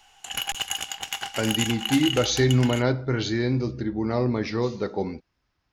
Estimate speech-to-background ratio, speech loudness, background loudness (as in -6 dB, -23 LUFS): 4.5 dB, -25.0 LUFS, -29.5 LUFS